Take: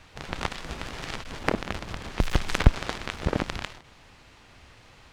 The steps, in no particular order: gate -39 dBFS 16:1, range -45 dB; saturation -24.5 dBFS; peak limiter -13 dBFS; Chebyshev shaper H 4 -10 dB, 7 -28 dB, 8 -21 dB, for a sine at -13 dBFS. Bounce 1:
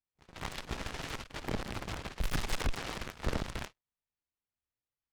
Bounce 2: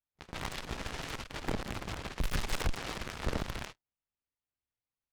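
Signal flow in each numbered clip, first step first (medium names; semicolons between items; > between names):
peak limiter > Chebyshev shaper > saturation > gate; Chebyshev shaper > peak limiter > gate > saturation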